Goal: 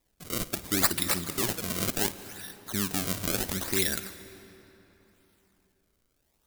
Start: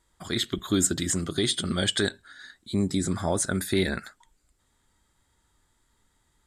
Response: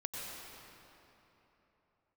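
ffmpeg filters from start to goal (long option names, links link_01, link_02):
-filter_complex "[0:a]acrusher=samples=29:mix=1:aa=0.000001:lfo=1:lforange=46.4:lforate=0.71,crystalizer=i=5:c=0,asplit=2[link_01][link_02];[1:a]atrim=start_sample=2205,asetrate=43659,aresample=44100,adelay=54[link_03];[link_02][link_03]afir=irnorm=-1:irlink=0,volume=-13.5dB[link_04];[link_01][link_04]amix=inputs=2:normalize=0,volume=-7.5dB"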